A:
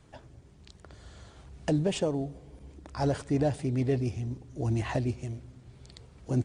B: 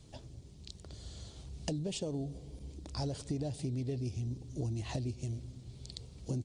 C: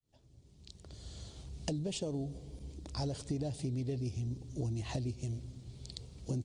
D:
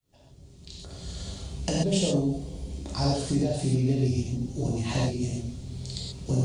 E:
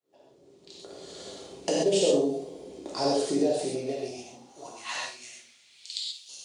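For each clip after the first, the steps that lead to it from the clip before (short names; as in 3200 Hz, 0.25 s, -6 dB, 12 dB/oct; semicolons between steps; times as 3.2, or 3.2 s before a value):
EQ curve 130 Hz 0 dB, 490 Hz -4 dB, 1600 Hz -13 dB, 4200 Hz +7 dB; compressor 16:1, threshold -35 dBFS, peak gain reduction 13 dB; high shelf 5700 Hz -7 dB; gain +2.5 dB
opening faded in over 1.19 s
reverb, pre-delay 3 ms, DRR -5 dB; gain +6 dB
high-pass sweep 400 Hz -> 3500 Hz, 3.49–6.22; on a send: flutter echo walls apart 9.6 m, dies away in 0.33 s; on the sum: mismatched tape noise reduction decoder only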